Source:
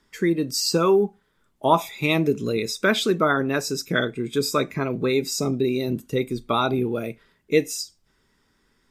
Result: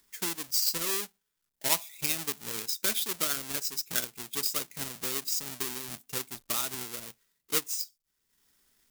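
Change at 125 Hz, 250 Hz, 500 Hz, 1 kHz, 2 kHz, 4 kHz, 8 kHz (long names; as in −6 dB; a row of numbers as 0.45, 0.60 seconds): −19.5, −20.5, −20.5, −16.0, −11.5, −4.5, +1.0 decibels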